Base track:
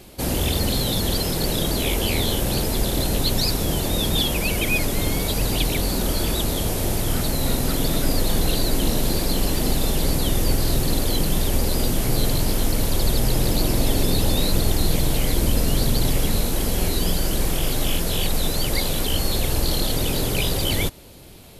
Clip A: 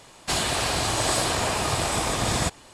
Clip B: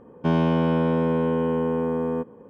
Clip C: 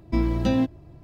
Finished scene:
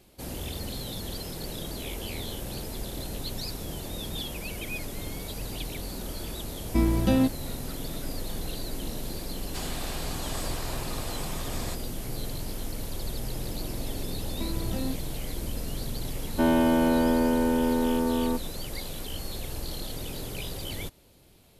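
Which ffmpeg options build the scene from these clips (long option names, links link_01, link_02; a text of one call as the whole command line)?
ffmpeg -i bed.wav -i cue0.wav -i cue1.wav -i cue2.wav -filter_complex "[3:a]asplit=2[link_01][link_02];[0:a]volume=-13.5dB[link_03];[link_02]acompressor=threshold=-26dB:ratio=6:attack=3.2:release=140:knee=1:detection=peak[link_04];[2:a]aecho=1:1:3.3:0.89[link_05];[link_01]atrim=end=1.03,asetpts=PTS-STARTPTS,volume=-0.5dB,afade=type=in:duration=0.004:curve=hsin,afade=type=out:start_time=1.026:duration=0.004:curve=hsin,adelay=6620[link_06];[1:a]atrim=end=2.73,asetpts=PTS-STARTPTS,volume=-13.5dB,afade=type=in:duration=0.004:curve=hsin,afade=type=out:start_time=2.726:duration=0.004:curve=hsin,adelay=9260[link_07];[link_04]atrim=end=1.03,asetpts=PTS-STARTPTS,volume=-3dB,afade=type=in:duration=0.004:curve=hsin,afade=type=out:start_time=1.026:duration=0.004:curve=hsin,adelay=629748S[link_08];[link_05]atrim=end=2.49,asetpts=PTS-STARTPTS,volume=-2.5dB,afade=type=in:duration=0.004:curve=hsin,afade=type=out:start_time=2.486:duration=0.004:curve=hsin,adelay=16140[link_09];[link_03][link_06][link_07][link_08][link_09]amix=inputs=5:normalize=0" out.wav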